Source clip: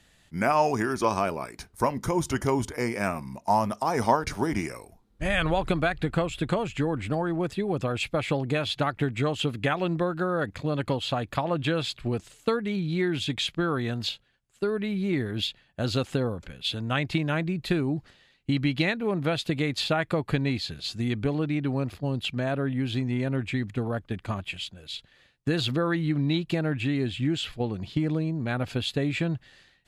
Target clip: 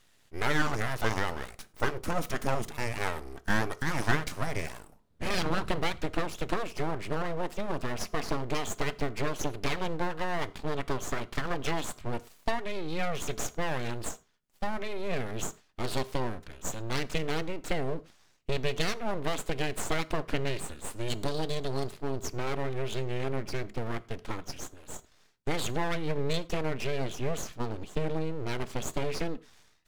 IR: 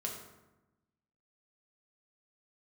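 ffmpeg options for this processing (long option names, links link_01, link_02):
-filter_complex "[0:a]asettb=1/sr,asplit=3[link_01][link_02][link_03];[link_01]atrim=end=21.084[link_04];[link_02]atrim=start=21.08:end=21.91,asetpts=PTS-STARTPTS,afade=type=in:duration=0.004:curve=qsin,afade=type=out:start_time=0.826:duration=0.004:curve=qsin,highshelf=frequency=3100:width_type=q:width=3:gain=9.5[link_05];[link_03]atrim=start=21.906[link_06];[link_04][link_05]acrossfade=duration=0.004:curve1=hsin:curve2=qsin[link_07];[link_07][link_06]acrossfade=duration=0.004:curve1=qsin:curve2=hsin,aeval=exprs='abs(val(0))':channel_layout=same,asplit=2[link_08][link_09];[1:a]atrim=start_sample=2205,afade=type=out:start_time=0.16:duration=0.01,atrim=end_sample=7497[link_10];[link_09][link_10]afir=irnorm=-1:irlink=0,volume=-12dB[link_11];[link_08][link_11]amix=inputs=2:normalize=0,volume=-3.5dB"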